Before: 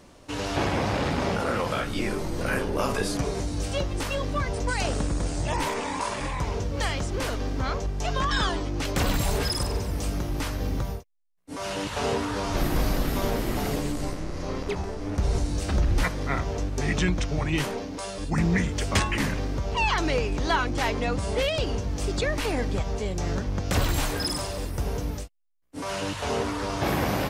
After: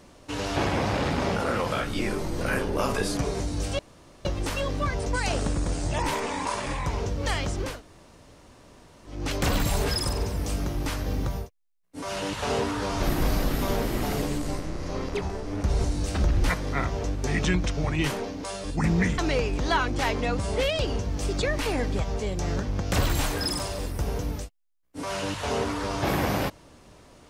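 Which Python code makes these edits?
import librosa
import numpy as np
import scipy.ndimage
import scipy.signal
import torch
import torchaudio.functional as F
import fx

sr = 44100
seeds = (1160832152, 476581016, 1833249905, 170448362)

y = fx.edit(x, sr, fx.insert_room_tone(at_s=3.79, length_s=0.46),
    fx.room_tone_fill(start_s=7.25, length_s=1.45, crossfade_s=0.24),
    fx.cut(start_s=18.72, length_s=1.25), tone=tone)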